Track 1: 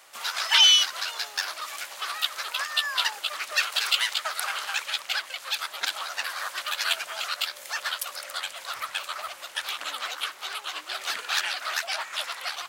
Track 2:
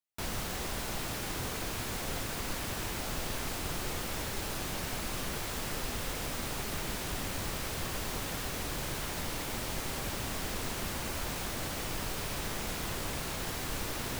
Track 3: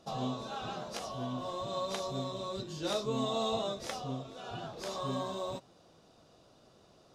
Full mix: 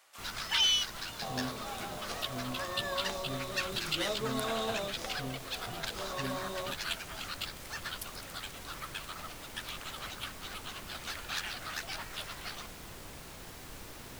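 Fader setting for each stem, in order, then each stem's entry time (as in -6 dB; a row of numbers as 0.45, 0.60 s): -10.5, -11.0, -2.0 dB; 0.00, 0.00, 1.15 s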